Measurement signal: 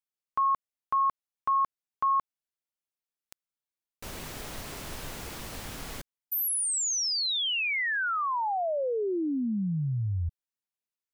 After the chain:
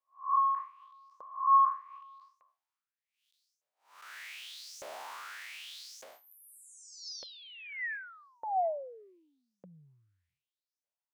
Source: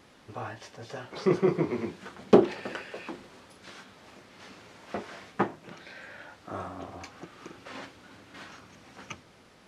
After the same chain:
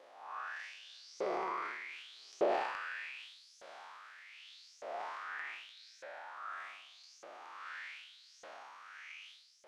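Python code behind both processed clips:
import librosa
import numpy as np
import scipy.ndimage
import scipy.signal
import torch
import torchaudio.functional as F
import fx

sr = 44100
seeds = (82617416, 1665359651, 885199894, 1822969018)

y = fx.spec_blur(x, sr, span_ms=245.0)
y = fx.filter_lfo_highpass(y, sr, shape='saw_up', hz=0.83, low_hz=530.0, high_hz=6500.0, q=5.0)
y = fx.transient(y, sr, attack_db=0, sustain_db=8)
y = fx.high_shelf(y, sr, hz=6800.0, db=-9.0)
y = F.gain(torch.from_numpy(y), -4.5).numpy()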